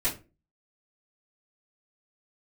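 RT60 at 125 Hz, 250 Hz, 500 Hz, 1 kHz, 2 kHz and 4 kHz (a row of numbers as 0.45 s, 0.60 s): 0.45 s, 0.45 s, 0.35 s, 0.25 s, 0.25 s, 0.20 s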